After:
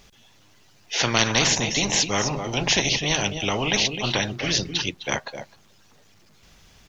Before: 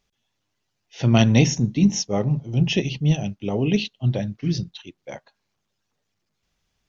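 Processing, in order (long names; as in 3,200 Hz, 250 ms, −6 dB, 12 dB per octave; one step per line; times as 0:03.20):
on a send: single-tap delay 257 ms −20 dB
on the sum: every bin compressed towards the loudest bin 4 to 1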